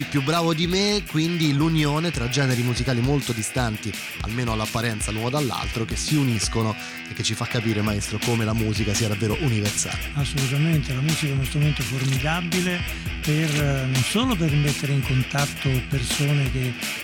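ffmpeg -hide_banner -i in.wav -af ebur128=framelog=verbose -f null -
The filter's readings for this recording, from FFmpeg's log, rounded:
Integrated loudness:
  I:         -23.0 LUFS
  Threshold: -33.0 LUFS
Loudness range:
  LRA:         2.5 LU
  Threshold: -43.2 LUFS
  LRA low:   -24.5 LUFS
  LRA high:  -22.0 LUFS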